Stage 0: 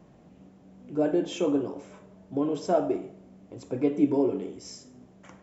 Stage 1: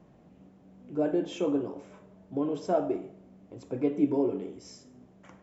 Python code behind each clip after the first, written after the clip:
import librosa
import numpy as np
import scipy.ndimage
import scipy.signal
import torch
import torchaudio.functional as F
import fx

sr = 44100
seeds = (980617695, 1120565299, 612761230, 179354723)

y = fx.high_shelf(x, sr, hz=4900.0, db=-6.5)
y = F.gain(torch.from_numpy(y), -2.5).numpy()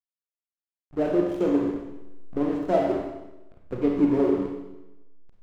y = fx.backlash(x, sr, play_db=-30.5)
y = fx.rev_schroeder(y, sr, rt60_s=1.0, comb_ms=31, drr_db=1.0)
y = F.gain(torch.from_numpy(y), 3.5).numpy()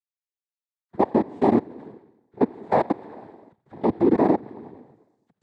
y = fx.freq_compress(x, sr, knee_hz=1000.0, ratio=1.5)
y = fx.level_steps(y, sr, step_db=23)
y = fx.noise_vocoder(y, sr, seeds[0], bands=6)
y = F.gain(torch.from_numpy(y), 6.5).numpy()